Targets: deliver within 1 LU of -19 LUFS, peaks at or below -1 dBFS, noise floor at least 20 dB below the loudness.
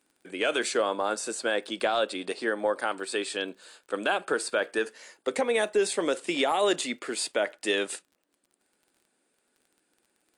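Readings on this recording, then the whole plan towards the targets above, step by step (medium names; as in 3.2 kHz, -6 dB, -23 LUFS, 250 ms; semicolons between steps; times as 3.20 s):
tick rate 33 per s; loudness -28.5 LUFS; peak level -15.0 dBFS; loudness target -19.0 LUFS
-> de-click; trim +9.5 dB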